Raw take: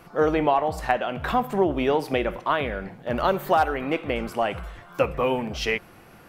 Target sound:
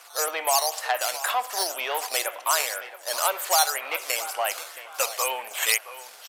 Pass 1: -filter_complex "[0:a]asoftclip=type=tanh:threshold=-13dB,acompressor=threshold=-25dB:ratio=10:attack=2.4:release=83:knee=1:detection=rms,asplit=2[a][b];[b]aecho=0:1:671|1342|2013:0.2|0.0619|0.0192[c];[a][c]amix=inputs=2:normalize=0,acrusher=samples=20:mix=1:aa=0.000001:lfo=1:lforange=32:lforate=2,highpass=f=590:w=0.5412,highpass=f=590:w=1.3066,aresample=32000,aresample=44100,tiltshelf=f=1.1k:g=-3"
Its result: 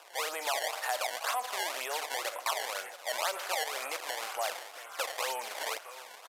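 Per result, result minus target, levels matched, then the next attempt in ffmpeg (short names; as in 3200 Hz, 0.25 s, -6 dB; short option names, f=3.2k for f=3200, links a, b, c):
compressor: peak gain reduction +9.5 dB; decimation with a swept rate: distortion +11 dB; 8000 Hz band -3.0 dB
-filter_complex "[0:a]asoftclip=type=tanh:threshold=-13dB,asplit=2[a][b];[b]aecho=0:1:671|1342|2013:0.2|0.0619|0.0192[c];[a][c]amix=inputs=2:normalize=0,acrusher=samples=20:mix=1:aa=0.000001:lfo=1:lforange=32:lforate=2,highpass=f=590:w=0.5412,highpass=f=590:w=1.3066,aresample=32000,aresample=44100,tiltshelf=f=1.1k:g=-3"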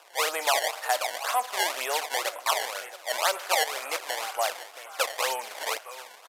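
decimation with a swept rate: distortion +12 dB; 8000 Hz band -3.0 dB
-filter_complex "[0:a]asoftclip=type=tanh:threshold=-13dB,asplit=2[a][b];[b]aecho=0:1:671|1342|2013:0.2|0.0619|0.0192[c];[a][c]amix=inputs=2:normalize=0,acrusher=samples=5:mix=1:aa=0.000001:lfo=1:lforange=8:lforate=2,highpass=f=590:w=0.5412,highpass=f=590:w=1.3066,aresample=32000,aresample=44100,tiltshelf=f=1.1k:g=-3"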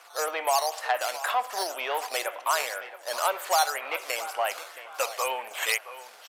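8000 Hz band -4.5 dB
-filter_complex "[0:a]asoftclip=type=tanh:threshold=-13dB,asplit=2[a][b];[b]aecho=0:1:671|1342|2013:0.2|0.0619|0.0192[c];[a][c]amix=inputs=2:normalize=0,acrusher=samples=5:mix=1:aa=0.000001:lfo=1:lforange=8:lforate=2,highpass=f=590:w=0.5412,highpass=f=590:w=1.3066,highshelf=f=4k:g=9.5,aresample=32000,aresample=44100,tiltshelf=f=1.1k:g=-3"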